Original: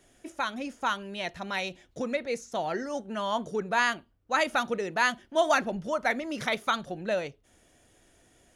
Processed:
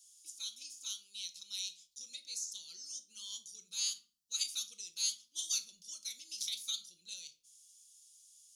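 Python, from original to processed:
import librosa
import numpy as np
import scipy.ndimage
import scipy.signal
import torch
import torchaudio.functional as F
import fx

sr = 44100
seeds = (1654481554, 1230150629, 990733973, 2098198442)

y = scipy.signal.sosfilt(scipy.signal.cheby2(4, 50, 1900.0, 'highpass', fs=sr, output='sos'), x)
y = fx.high_shelf(y, sr, hz=6500.0, db=-7.0)
y = fx.room_shoebox(y, sr, seeds[0], volume_m3=420.0, walls='furnished', distance_m=0.77)
y = y * 10.0 ** (10.5 / 20.0)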